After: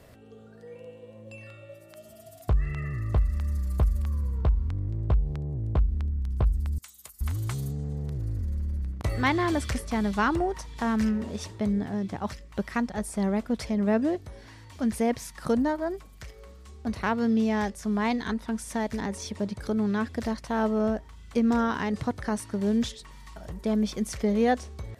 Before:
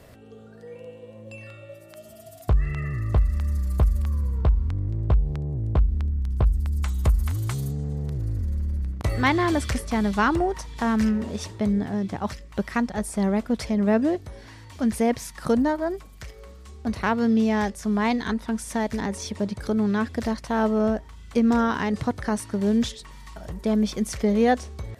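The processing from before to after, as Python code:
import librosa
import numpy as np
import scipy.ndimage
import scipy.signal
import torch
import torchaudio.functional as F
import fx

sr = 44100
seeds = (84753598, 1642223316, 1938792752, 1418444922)

y = fx.differentiator(x, sr, at=(6.78, 7.21))
y = y * librosa.db_to_amplitude(-3.5)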